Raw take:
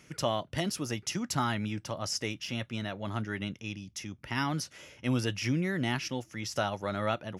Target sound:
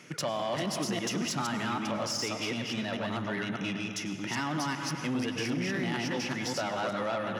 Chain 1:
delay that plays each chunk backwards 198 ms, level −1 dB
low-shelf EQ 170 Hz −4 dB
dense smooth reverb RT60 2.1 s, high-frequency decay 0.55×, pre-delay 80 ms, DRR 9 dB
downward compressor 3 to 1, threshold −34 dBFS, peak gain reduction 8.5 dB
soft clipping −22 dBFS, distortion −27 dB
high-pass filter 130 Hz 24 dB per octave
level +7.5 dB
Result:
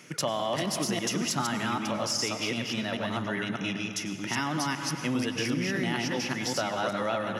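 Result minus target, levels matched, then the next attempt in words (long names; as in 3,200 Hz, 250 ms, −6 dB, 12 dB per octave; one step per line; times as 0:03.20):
soft clipping: distortion −13 dB; 8,000 Hz band +2.0 dB
delay that plays each chunk backwards 198 ms, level −1 dB
low-shelf EQ 170 Hz −4 dB
dense smooth reverb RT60 2.1 s, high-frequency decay 0.55×, pre-delay 80 ms, DRR 9 dB
downward compressor 3 to 1, threshold −34 dBFS, peak gain reduction 8.5 dB
high-shelf EQ 7,900 Hz −8.5 dB
soft clipping −32 dBFS, distortion −14 dB
high-pass filter 130 Hz 24 dB per octave
level +7.5 dB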